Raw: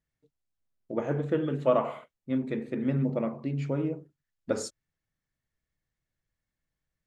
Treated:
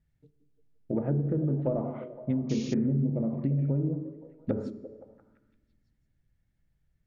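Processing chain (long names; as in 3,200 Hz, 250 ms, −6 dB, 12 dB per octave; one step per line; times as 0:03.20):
in parallel at −11 dB: soft clipping −22 dBFS, distortion −13 dB
on the sum: low-shelf EQ 310 Hz +2 dB
treble cut that deepens with the level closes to 680 Hz, closed at −22.5 dBFS
bass and treble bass +11 dB, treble −6 dB
downward compressor, threshold −25 dBFS, peak gain reduction 12 dB
notch filter 1,100 Hz, Q 8.5
echo through a band-pass that steps 172 ms, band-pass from 270 Hz, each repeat 0.7 octaves, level −8 dB
on a send at −15 dB: convolution reverb RT60 1.5 s, pre-delay 3 ms
on the sum: sound drawn into the spectrogram noise, 0:02.49–0:02.74, 2,100–6,900 Hz −46 dBFS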